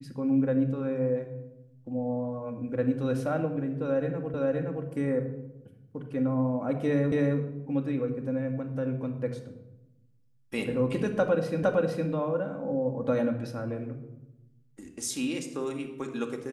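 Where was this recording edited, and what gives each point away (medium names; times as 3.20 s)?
4.34 s: repeat of the last 0.52 s
7.12 s: repeat of the last 0.27 s
11.63 s: repeat of the last 0.46 s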